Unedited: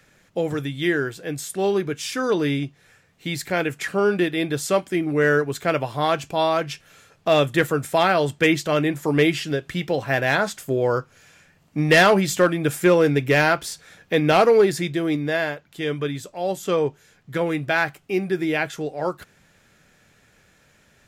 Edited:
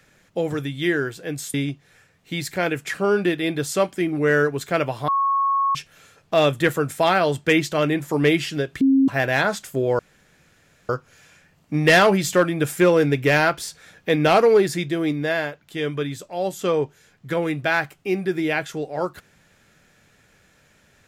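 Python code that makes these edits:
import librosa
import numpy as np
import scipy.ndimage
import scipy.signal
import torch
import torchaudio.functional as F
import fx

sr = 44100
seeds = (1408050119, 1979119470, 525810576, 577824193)

y = fx.edit(x, sr, fx.cut(start_s=1.54, length_s=0.94),
    fx.bleep(start_s=6.02, length_s=0.67, hz=1100.0, db=-17.0),
    fx.bleep(start_s=9.75, length_s=0.27, hz=269.0, db=-12.5),
    fx.insert_room_tone(at_s=10.93, length_s=0.9), tone=tone)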